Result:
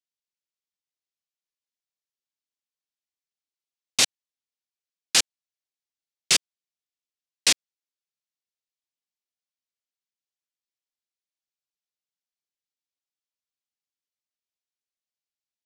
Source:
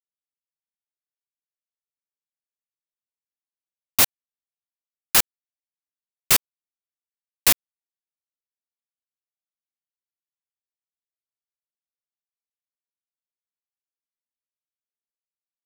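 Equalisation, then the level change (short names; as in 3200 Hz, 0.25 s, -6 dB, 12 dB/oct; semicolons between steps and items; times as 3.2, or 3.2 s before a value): HPF 780 Hz 6 dB/oct; Bessel low-pass 5300 Hz, order 4; bell 1100 Hz -14.5 dB 2.3 oct; +8.5 dB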